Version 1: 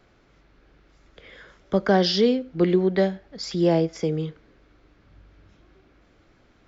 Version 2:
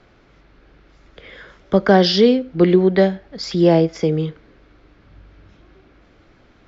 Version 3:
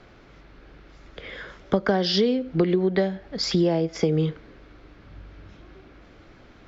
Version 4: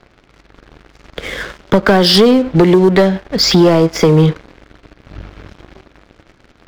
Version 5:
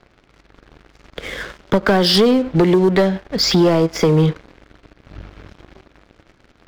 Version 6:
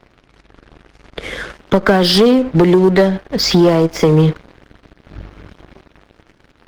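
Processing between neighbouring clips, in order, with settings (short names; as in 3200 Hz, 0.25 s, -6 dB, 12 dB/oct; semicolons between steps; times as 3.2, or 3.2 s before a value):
LPF 5700 Hz 12 dB/oct; gain +6.5 dB
compressor 16:1, threshold -19 dBFS, peak gain reduction 13 dB; gain +2 dB
sample leveller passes 3; gain +4 dB
ending taper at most 540 dB/s; gain -4.5 dB
gain +3.5 dB; Opus 20 kbps 48000 Hz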